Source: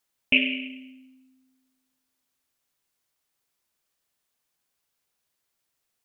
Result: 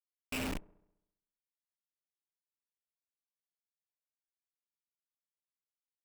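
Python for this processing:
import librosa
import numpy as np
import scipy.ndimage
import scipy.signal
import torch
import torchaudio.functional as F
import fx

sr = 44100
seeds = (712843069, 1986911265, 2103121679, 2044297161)

y = fx.schmitt(x, sr, flips_db=-25.5)
y = fx.echo_wet_lowpass(y, sr, ms=67, feedback_pct=59, hz=960.0, wet_db=-22.5)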